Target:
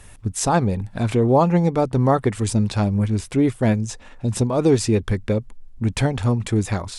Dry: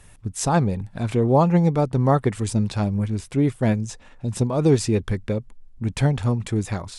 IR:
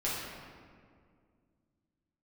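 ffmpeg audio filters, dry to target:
-filter_complex "[0:a]equalizer=frequency=150:width=6.1:gain=-8.5,asplit=2[link_01][link_02];[link_02]alimiter=limit=-17.5dB:level=0:latency=1:release=396,volume=0dB[link_03];[link_01][link_03]amix=inputs=2:normalize=0,volume=-1dB"

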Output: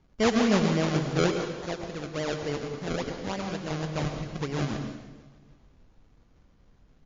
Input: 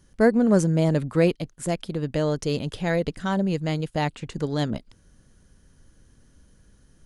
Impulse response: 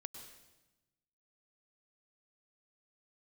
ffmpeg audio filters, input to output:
-filter_complex "[0:a]asettb=1/sr,asplit=3[link_01][link_02][link_03];[link_01]atrim=end=1.304[link_04];[link_02]atrim=start=1.3:end=3.71,asetpts=PTS-STARTPTS,afade=type=in:duration=0.004:curve=qsin,afade=type=out:start_time=2.406:duration=0.004:curve=qsin,highpass=frequency=290:poles=1[link_05];[link_03]atrim=start=3.706[link_06];[link_04][link_05]acrossfade=duration=0.004:curve1=hsin:curve2=qsin[link_07];[link_07][link_06]acrossfade=duration=0.004:curve1=qsin:curve2=hsin,acrusher=samples=33:mix=1:aa=0.000001:lfo=1:lforange=33:lforate=3.5,aecho=1:1:307|614|921:0.0794|0.0365|0.0168[link_08];[1:a]atrim=start_sample=2205[link_09];[link_08][link_09]afir=irnorm=-1:irlink=0" -ar 16000 -c:a libmp3lame -b:a 32k

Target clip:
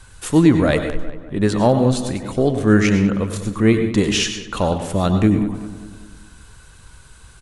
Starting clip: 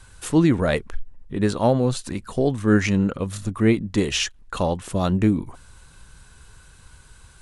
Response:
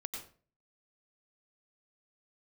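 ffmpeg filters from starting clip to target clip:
-filter_complex "[0:a]asplit=2[link_01][link_02];[link_02]adelay=196,lowpass=frequency=2700:poles=1,volume=-13dB,asplit=2[link_03][link_04];[link_04]adelay=196,lowpass=frequency=2700:poles=1,volume=0.5,asplit=2[link_05][link_06];[link_06]adelay=196,lowpass=frequency=2700:poles=1,volume=0.5,asplit=2[link_07][link_08];[link_08]adelay=196,lowpass=frequency=2700:poles=1,volume=0.5,asplit=2[link_09][link_10];[link_10]adelay=196,lowpass=frequency=2700:poles=1,volume=0.5[link_11];[link_01][link_03][link_05][link_07][link_09][link_11]amix=inputs=6:normalize=0,asplit=2[link_12][link_13];[1:a]atrim=start_sample=2205,atrim=end_sample=6615,asetrate=41895,aresample=44100[link_14];[link_13][link_14]afir=irnorm=-1:irlink=0,volume=1.5dB[link_15];[link_12][link_15]amix=inputs=2:normalize=0,volume=-2dB"

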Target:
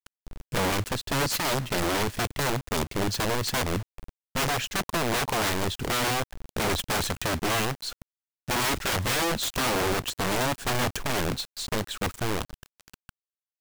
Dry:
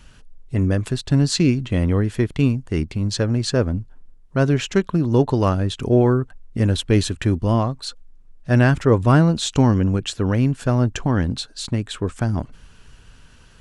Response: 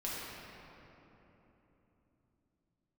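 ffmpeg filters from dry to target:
-af "aeval=exprs='(mod(7.08*val(0)+1,2)-1)/7.08':channel_layout=same,acrusher=bits=5:mix=0:aa=0.000001,volume=-4dB"

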